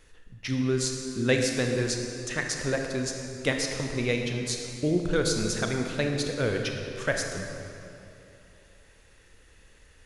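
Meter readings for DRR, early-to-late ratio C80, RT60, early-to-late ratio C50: 2.5 dB, 4.5 dB, 2.8 s, 3.5 dB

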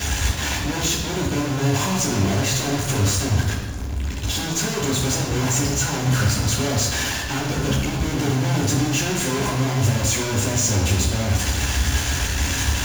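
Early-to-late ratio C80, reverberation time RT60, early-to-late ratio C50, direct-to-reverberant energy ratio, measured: 5.5 dB, 1.0 s, 3.0 dB, −9.0 dB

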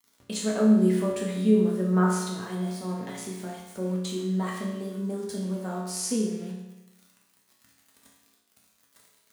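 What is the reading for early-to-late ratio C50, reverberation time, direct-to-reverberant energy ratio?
2.0 dB, 1.0 s, −3.5 dB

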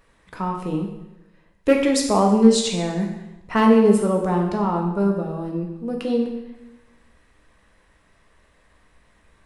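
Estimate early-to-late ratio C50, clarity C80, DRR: 5.0 dB, 7.5 dB, 1.5 dB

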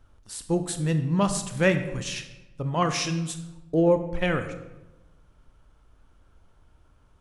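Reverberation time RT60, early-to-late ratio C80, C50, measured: 1.0 s, 12.0 dB, 10.0 dB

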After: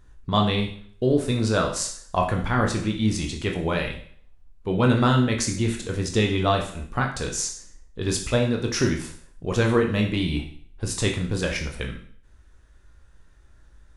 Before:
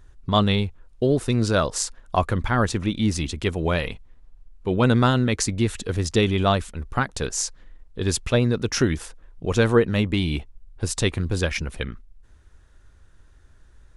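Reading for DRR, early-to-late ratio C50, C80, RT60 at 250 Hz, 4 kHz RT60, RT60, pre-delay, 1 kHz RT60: 1.5 dB, 8.0 dB, 11.5 dB, 0.50 s, 0.55 s, 0.55 s, 17 ms, 0.55 s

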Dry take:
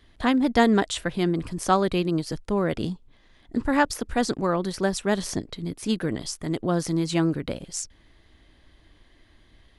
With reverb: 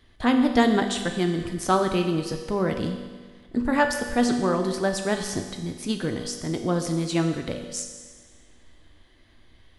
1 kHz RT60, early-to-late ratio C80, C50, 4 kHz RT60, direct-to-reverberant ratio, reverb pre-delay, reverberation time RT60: 1.5 s, 8.0 dB, 6.5 dB, 1.5 s, 4.0 dB, 4 ms, 1.5 s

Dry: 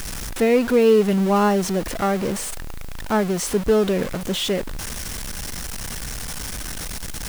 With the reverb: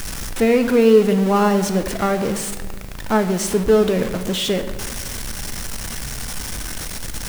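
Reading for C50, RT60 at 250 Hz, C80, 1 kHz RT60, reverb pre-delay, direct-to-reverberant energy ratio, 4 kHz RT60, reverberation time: 11.0 dB, 2.1 s, 12.5 dB, 1.2 s, 9 ms, 8.0 dB, 0.95 s, 1.4 s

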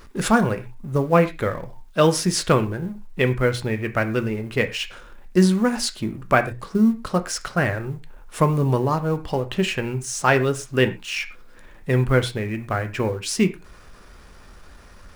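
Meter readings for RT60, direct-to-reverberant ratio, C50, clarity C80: non-exponential decay, 7.5 dB, 15.0 dB, 19.5 dB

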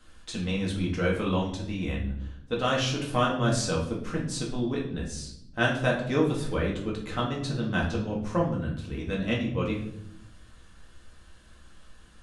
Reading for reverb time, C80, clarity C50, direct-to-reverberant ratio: 0.80 s, 10.0 dB, 6.0 dB, −3.5 dB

